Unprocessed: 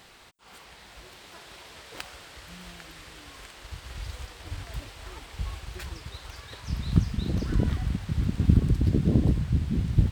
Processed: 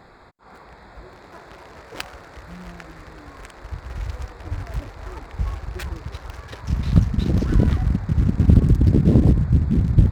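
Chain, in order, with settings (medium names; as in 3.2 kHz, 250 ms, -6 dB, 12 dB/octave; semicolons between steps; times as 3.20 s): local Wiener filter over 15 samples; saturation -10.5 dBFS, distortion -18 dB; trim +8.5 dB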